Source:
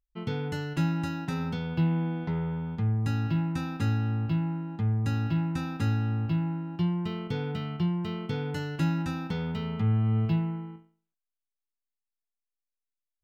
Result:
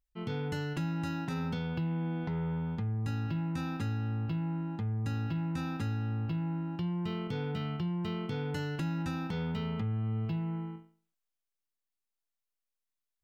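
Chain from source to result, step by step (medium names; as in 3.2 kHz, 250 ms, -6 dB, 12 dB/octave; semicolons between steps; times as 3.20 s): compression, threshold -30 dBFS, peak gain reduction 8.5 dB; transient shaper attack -4 dB, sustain +2 dB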